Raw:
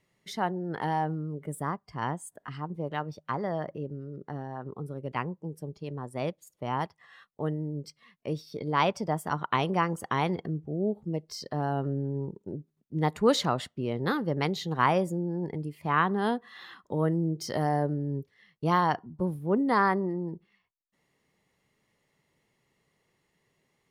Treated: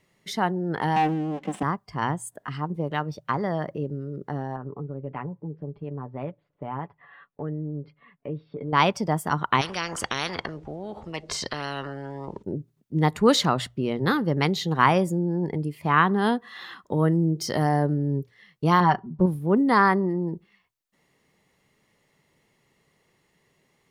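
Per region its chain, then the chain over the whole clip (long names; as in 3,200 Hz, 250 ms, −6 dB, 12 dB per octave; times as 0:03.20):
0:00.96–0:01.63: lower of the sound and its delayed copy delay 3.9 ms + loudspeaker in its box 170–7,200 Hz, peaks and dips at 200 Hz +8 dB, 520 Hz −5 dB, 750 Hz +4 dB, 1,400 Hz −5 dB, 3,000 Hz +6 dB, 4,500 Hz −7 dB + leveller curve on the samples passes 1
0:04.56–0:08.73: Gaussian smoothing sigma 3.8 samples + comb filter 7 ms, depth 49% + downward compressor 2 to 1, threshold −41 dBFS
0:09.61–0:12.43: high-frequency loss of the air 98 metres + every bin compressed towards the loudest bin 4 to 1
0:18.80–0:19.26: low-pass filter 2,100 Hz 6 dB per octave + comb filter 5.2 ms, depth 66%
whole clip: mains-hum notches 60/120 Hz; dynamic equaliser 580 Hz, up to −4 dB, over −36 dBFS, Q 1.2; level +6.5 dB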